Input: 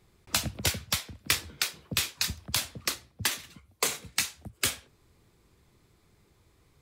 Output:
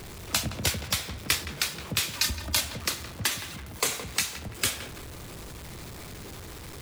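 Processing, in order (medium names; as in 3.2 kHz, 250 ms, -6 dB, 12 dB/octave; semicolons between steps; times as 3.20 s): jump at every zero crossing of -36.5 dBFS; 2.13–2.61 s: comb 3.3 ms, depth 84%; filtered feedback delay 168 ms, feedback 55%, low-pass 2 kHz, level -10 dB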